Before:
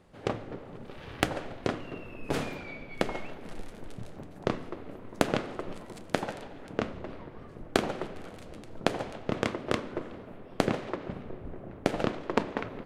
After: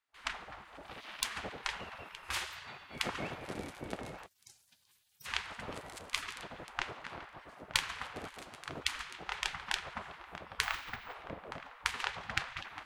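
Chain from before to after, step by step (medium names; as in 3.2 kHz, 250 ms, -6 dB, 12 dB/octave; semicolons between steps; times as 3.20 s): on a send: filtered feedback delay 920 ms, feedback 64%, low-pass 3.2 kHz, level -15.5 dB; on the sum: gate with hold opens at -43 dBFS; 2.08–2.91 s: high-pass 72 Hz -> 240 Hz 12 dB/octave; 4.26–5.26 s: differentiator; spectral gate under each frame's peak -15 dB weak; 10.63–11.14 s: careless resampling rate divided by 2×, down none, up hold; trim +3.5 dB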